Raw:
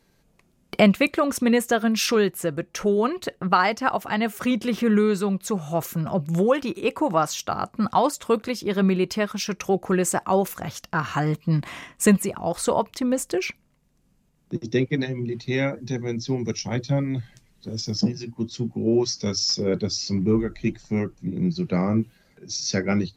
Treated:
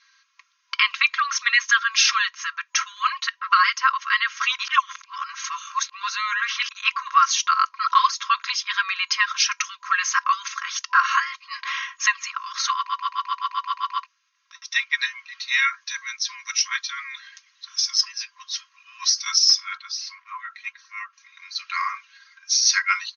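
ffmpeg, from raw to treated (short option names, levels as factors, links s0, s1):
-filter_complex "[0:a]asettb=1/sr,asplit=3[s0][s1][s2];[s0]atrim=end=19.774[s3];[s1]atrim=start=19.77:end=21.13,asetpts=PTS-STARTPTS,afade=t=in:d=0.004:c=qsin,afade=t=out:st=1.356:d=0.004:c=qsin,lowpass=f=1200:p=1[s4];[s2]atrim=start=21.126[s5];[s3][s4]acrossfade=d=0.004:c1=hsin:c2=qsin[s6];[s6][s5]acrossfade=d=0.004:c1=qsin:c2=hsin,asplit=13[s7][s8][s9][s10][s11][s12][s13][s14][s15][s16][s17][s18][s19];[s7]atrim=end=4.592[s20];[s8]atrim=start=4.588:end=6.712,asetpts=PTS-STARTPTS,areverse[s21];[s9]atrim=start=6.708:end=12.892[s22];[s10]atrim=start=12.758:end=12.892[s23];[s11]atrim=start=12.758:end=12.892[s24];[s12]atrim=start=12.758:end=12.892[s25];[s13]atrim=start=12.758:end=12.892[s26];[s14]atrim=start=12.758:end=12.892[s27];[s15]atrim=start=12.758:end=12.892[s28];[s16]atrim=start=12.758:end=12.892[s29];[s17]atrim=start=12.758:end=12.892[s30];[s18]atrim=start=12.758:end=12.892[s31];[s19]atrim=start=14.058[s32];[s20][s21]acrossfade=d=0.004:c1=hsin:c2=hsin[s33];[s33][s22]acrossfade=d=0.004:c1=hsin:c2=hsin[s34];[s34][s23]acrossfade=d=0.004:c1=hsin:c2=hsin[s35];[s35][s24]acrossfade=d=0.004:c1=hsin:c2=hsin[s36];[s36][s25]acrossfade=d=0.004:c1=hsin:c2=hsin[s37];[s37][s26]acrossfade=d=0.004:c1=hsin:c2=hsin[s38];[s38][s27]acrossfade=d=0.004:c1=hsin:c2=hsin[s39];[s39][s28]acrossfade=d=0.004:c1=hsin:c2=hsin[s40];[s40][s29]acrossfade=d=0.004:c1=hsin:c2=hsin[s41];[s41][s30]acrossfade=d=0.004:c1=hsin:c2=hsin[s42];[s42][s31]acrossfade=d=0.004:c1=hsin:c2=hsin[s43];[s43][s32]acrossfade=d=0.004:c1=hsin:c2=hsin,aecho=1:1:3.7:0.83,afftfilt=real='re*between(b*sr/4096,1000,6700)':imag='im*between(b*sr/4096,1000,6700)':win_size=4096:overlap=0.75,alimiter=limit=0.188:level=0:latency=1:release=335,volume=2.66"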